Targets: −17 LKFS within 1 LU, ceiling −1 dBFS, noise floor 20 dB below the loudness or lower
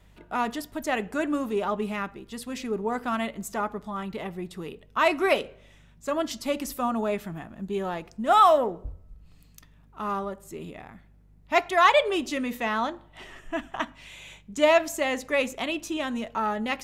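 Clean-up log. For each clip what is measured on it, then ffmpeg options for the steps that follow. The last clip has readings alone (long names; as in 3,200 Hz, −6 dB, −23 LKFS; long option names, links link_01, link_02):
mains hum 50 Hz; hum harmonics up to 150 Hz; level of the hum −54 dBFS; integrated loudness −26.5 LKFS; sample peak −5.5 dBFS; target loudness −17.0 LKFS
→ -af "bandreject=frequency=50:width_type=h:width=4,bandreject=frequency=100:width_type=h:width=4,bandreject=frequency=150:width_type=h:width=4"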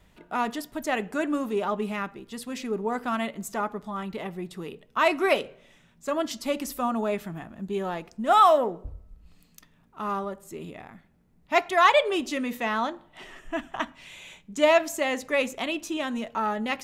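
mains hum none found; integrated loudness −26.5 LKFS; sample peak −5.5 dBFS; target loudness −17.0 LKFS
→ -af "volume=9.5dB,alimiter=limit=-1dB:level=0:latency=1"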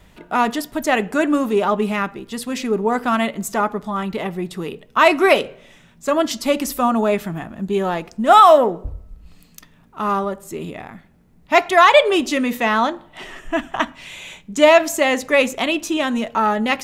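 integrated loudness −17.5 LKFS; sample peak −1.0 dBFS; background noise floor −51 dBFS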